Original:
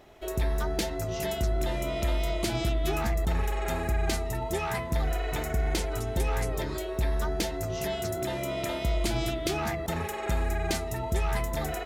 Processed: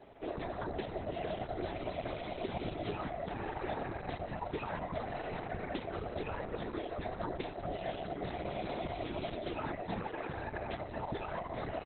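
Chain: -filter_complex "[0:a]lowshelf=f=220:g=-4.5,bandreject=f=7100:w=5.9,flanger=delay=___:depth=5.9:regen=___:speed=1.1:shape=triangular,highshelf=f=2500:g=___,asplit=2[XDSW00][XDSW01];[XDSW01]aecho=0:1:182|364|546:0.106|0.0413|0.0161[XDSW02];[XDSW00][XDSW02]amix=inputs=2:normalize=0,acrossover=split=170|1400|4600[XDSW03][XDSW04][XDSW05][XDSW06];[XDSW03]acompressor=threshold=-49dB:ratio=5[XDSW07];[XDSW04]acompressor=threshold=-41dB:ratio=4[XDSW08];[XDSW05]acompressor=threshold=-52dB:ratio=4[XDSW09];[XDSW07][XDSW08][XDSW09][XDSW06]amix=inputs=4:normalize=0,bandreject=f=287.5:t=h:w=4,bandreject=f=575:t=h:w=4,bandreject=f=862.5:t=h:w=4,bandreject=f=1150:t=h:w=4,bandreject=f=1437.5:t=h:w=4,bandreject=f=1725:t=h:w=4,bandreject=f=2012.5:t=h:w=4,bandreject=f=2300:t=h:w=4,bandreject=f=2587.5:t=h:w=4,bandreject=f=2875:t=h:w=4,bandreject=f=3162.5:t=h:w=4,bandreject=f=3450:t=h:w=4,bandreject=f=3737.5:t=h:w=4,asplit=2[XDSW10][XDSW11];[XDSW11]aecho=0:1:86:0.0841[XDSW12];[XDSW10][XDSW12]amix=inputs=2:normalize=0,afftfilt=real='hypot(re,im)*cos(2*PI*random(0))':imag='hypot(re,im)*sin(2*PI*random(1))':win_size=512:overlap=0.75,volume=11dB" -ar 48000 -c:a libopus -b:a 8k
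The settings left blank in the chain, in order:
5.2, 12, -10.5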